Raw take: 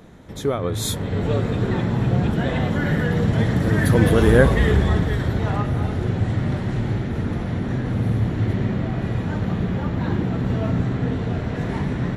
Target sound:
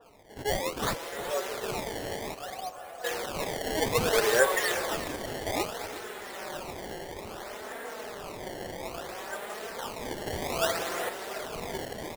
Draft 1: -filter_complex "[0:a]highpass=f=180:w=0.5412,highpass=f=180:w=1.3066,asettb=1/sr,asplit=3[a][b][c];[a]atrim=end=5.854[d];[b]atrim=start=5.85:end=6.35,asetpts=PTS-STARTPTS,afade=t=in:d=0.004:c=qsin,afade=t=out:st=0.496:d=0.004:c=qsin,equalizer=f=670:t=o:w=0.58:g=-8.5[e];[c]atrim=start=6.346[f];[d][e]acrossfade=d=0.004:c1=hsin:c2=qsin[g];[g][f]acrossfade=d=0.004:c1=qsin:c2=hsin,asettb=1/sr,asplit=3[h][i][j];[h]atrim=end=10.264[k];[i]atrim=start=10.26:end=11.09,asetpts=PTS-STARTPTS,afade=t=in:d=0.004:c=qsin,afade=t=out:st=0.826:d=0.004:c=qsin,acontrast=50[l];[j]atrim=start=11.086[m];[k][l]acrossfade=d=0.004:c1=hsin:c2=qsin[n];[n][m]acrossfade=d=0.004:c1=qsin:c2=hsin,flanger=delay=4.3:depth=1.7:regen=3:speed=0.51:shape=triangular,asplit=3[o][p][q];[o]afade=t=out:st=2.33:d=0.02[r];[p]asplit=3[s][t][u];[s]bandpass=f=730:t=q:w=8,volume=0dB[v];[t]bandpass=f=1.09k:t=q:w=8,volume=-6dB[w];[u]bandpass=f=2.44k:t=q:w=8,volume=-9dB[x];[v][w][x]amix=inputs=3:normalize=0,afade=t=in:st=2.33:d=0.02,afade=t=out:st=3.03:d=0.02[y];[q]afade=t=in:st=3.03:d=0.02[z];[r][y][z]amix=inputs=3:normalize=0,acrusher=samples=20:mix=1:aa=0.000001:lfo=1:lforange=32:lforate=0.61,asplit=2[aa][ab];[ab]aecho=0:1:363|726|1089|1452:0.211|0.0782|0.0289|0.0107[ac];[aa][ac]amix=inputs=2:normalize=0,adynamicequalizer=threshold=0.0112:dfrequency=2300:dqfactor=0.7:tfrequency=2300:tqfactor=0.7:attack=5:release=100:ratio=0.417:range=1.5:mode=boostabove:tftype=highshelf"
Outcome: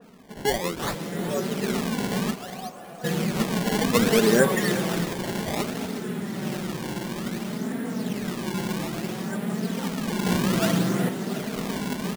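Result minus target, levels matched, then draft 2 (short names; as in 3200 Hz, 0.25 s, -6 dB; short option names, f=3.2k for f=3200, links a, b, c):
250 Hz band +10.0 dB
-filter_complex "[0:a]highpass=f=490:w=0.5412,highpass=f=490:w=1.3066,asettb=1/sr,asplit=3[a][b][c];[a]atrim=end=5.854[d];[b]atrim=start=5.85:end=6.35,asetpts=PTS-STARTPTS,afade=t=in:d=0.004:c=qsin,afade=t=out:st=0.496:d=0.004:c=qsin,equalizer=f=670:t=o:w=0.58:g=-8.5[e];[c]atrim=start=6.346[f];[d][e]acrossfade=d=0.004:c1=hsin:c2=qsin[g];[g][f]acrossfade=d=0.004:c1=qsin:c2=hsin,asettb=1/sr,asplit=3[h][i][j];[h]atrim=end=10.264[k];[i]atrim=start=10.26:end=11.09,asetpts=PTS-STARTPTS,afade=t=in:d=0.004:c=qsin,afade=t=out:st=0.826:d=0.004:c=qsin,acontrast=50[l];[j]atrim=start=11.086[m];[k][l]acrossfade=d=0.004:c1=hsin:c2=qsin[n];[n][m]acrossfade=d=0.004:c1=qsin:c2=hsin,flanger=delay=4.3:depth=1.7:regen=3:speed=0.51:shape=triangular,asplit=3[o][p][q];[o]afade=t=out:st=2.33:d=0.02[r];[p]asplit=3[s][t][u];[s]bandpass=f=730:t=q:w=8,volume=0dB[v];[t]bandpass=f=1.09k:t=q:w=8,volume=-6dB[w];[u]bandpass=f=2.44k:t=q:w=8,volume=-9dB[x];[v][w][x]amix=inputs=3:normalize=0,afade=t=in:st=2.33:d=0.02,afade=t=out:st=3.03:d=0.02[y];[q]afade=t=in:st=3.03:d=0.02[z];[r][y][z]amix=inputs=3:normalize=0,acrusher=samples=20:mix=1:aa=0.000001:lfo=1:lforange=32:lforate=0.61,asplit=2[aa][ab];[ab]aecho=0:1:363|726|1089|1452:0.211|0.0782|0.0289|0.0107[ac];[aa][ac]amix=inputs=2:normalize=0,adynamicequalizer=threshold=0.0112:dfrequency=2300:dqfactor=0.7:tfrequency=2300:tqfactor=0.7:attack=5:release=100:ratio=0.417:range=1.5:mode=boostabove:tftype=highshelf"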